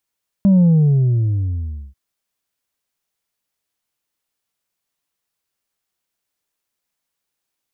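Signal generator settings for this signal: sub drop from 200 Hz, over 1.49 s, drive 2.5 dB, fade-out 1.34 s, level -9 dB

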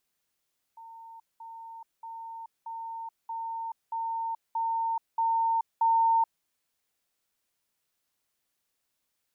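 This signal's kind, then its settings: level ladder 910 Hz -44 dBFS, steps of 3 dB, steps 9, 0.43 s 0.20 s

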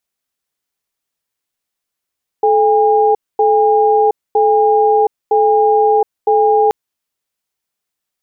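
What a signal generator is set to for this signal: cadence 433 Hz, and 811 Hz, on 0.72 s, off 0.24 s, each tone -11 dBFS 4.28 s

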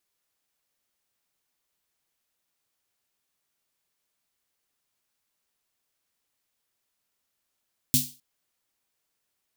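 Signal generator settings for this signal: snare drum length 0.26 s, tones 140 Hz, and 250 Hz, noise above 3400 Hz, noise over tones 5 dB, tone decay 0.27 s, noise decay 0.33 s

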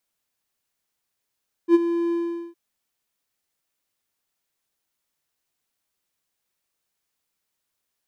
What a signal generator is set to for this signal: ADSR triangle 340 Hz, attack 66 ms, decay 28 ms, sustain -11.5 dB, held 0.44 s, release 0.422 s -7 dBFS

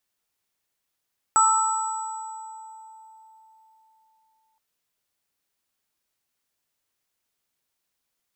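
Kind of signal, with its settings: sine partials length 3.22 s, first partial 883 Hz, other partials 1310/7860 Hz, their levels 4/1.5 dB, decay 3.99 s, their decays 1.94/2.26 s, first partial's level -20 dB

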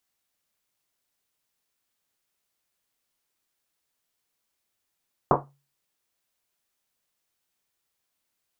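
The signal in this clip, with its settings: Risset drum, pitch 140 Hz, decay 0.38 s, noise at 720 Hz, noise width 890 Hz, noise 75%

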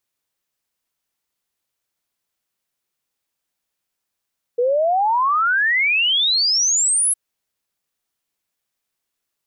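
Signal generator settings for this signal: log sweep 470 Hz -> 11000 Hz 2.56 s -14.5 dBFS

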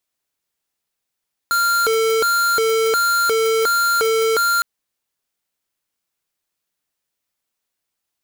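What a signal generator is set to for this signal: siren hi-lo 447–1390 Hz 1.4/s square -17 dBFS 3.11 s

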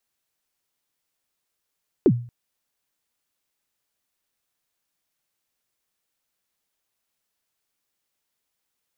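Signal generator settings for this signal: kick drum length 0.23 s, from 440 Hz, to 120 Hz, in 59 ms, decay 0.42 s, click off, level -9 dB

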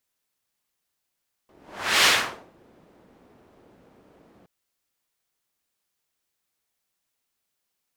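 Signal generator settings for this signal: whoosh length 2.97 s, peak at 0.56, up 0.52 s, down 0.50 s, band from 370 Hz, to 2900 Hz, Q 0.83, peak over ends 39 dB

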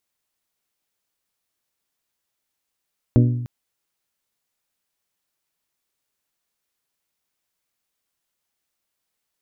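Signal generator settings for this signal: glass hit bell, length 0.30 s, lowest mode 121 Hz, modes 6, decay 0.98 s, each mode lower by 4 dB, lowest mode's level -10 dB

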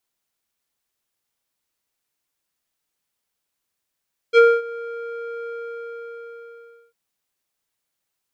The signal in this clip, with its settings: synth note square A#4 12 dB/oct, low-pass 1400 Hz, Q 1.5, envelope 1.5 oct, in 0.08 s, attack 47 ms, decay 0.24 s, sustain -21.5 dB, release 1.46 s, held 1.14 s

